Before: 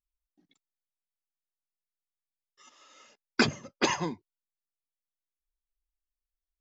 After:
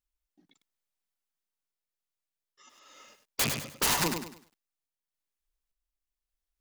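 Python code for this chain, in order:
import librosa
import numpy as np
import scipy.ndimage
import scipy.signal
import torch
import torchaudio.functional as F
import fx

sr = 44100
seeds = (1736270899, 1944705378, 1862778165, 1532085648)

y = fx.rattle_buzz(x, sr, strikes_db=-32.0, level_db=-18.0)
y = fx.tremolo_random(y, sr, seeds[0], hz=3.5, depth_pct=55)
y = (np.mod(10.0 ** (25.0 / 20.0) * y + 1.0, 2.0) - 1.0) / 10.0 ** (25.0 / 20.0)
y = fx.echo_crushed(y, sr, ms=101, feedback_pct=35, bits=11, wet_db=-6)
y = F.gain(torch.from_numpy(y), 5.0).numpy()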